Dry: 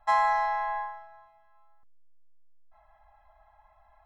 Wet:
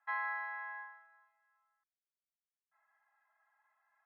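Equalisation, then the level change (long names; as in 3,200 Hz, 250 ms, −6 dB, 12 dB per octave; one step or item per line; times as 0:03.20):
four-pole ladder band-pass 1,900 Hz, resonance 50%
high-frequency loss of the air 300 metres
+3.0 dB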